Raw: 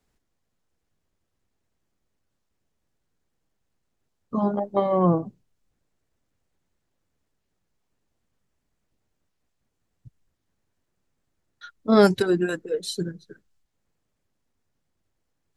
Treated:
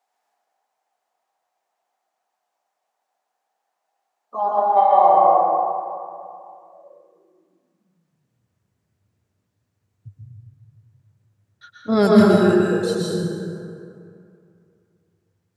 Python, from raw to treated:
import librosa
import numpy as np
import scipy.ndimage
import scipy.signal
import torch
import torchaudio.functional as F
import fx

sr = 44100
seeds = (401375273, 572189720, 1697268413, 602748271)

y = fx.rev_plate(x, sr, seeds[0], rt60_s=2.5, hf_ratio=0.5, predelay_ms=105, drr_db=-5.0)
y = fx.filter_sweep_highpass(y, sr, from_hz=760.0, to_hz=100.0, start_s=6.63, end_s=8.55, q=6.8)
y = y * 10.0 ** (-3.0 / 20.0)